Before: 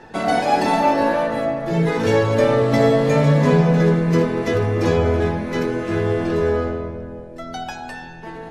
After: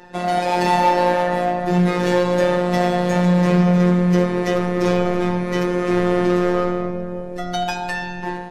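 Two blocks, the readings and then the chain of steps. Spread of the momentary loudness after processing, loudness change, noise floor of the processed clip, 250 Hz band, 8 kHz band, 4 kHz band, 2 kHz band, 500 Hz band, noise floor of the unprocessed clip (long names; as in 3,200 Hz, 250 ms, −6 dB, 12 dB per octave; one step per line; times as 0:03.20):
10 LU, −0.5 dB, −29 dBFS, +1.5 dB, +1.5 dB, +2.0 dB, +0.5 dB, −1.0 dB, −36 dBFS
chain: automatic gain control gain up to 9 dB
in parallel at −7 dB: wave folding −14.5 dBFS
on the sum: phases set to zero 178 Hz
level −2.5 dB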